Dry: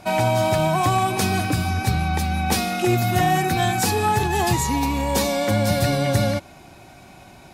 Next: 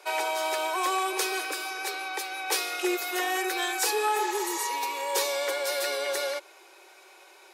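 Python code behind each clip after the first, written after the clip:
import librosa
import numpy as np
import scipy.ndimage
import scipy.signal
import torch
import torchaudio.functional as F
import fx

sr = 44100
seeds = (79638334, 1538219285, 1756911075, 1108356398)

y = fx.spec_repair(x, sr, seeds[0], start_s=4.19, length_s=0.44, low_hz=480.0, high_hz=7800.0, source='both')
y = scipy.signal.sosfilt(scipy.signal.butter(12, 360.0, 'highpass', fs=sr, output='sos'), y)
y = fx.peak_eq(y, sr, hz=690.0, db=-12.5, octaves=0.32)
y = y * 10.0 ** (-3.0 / 20.0)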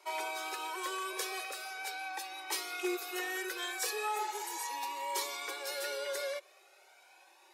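y = fx.comb_cascade(x, sr, direction='rising', hz=0.39)
y = y * 10.0 ** (-4.0 / 20.0)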